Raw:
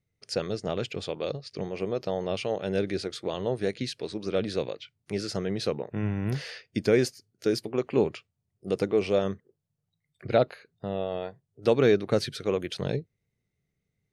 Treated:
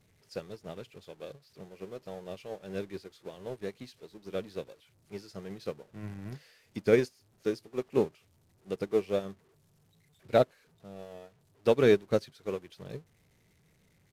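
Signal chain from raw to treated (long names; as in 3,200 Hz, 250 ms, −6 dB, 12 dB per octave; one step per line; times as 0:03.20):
converter with a step at zero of −33.5 dBFS
on a send at −19.5 dB: convolution reverb RT60 0.30 s, pre-delay 3 ms
on the sum: downsampling to 32,000 Hz
expander for the loud parts 2.5 to 1, over −35 dBFS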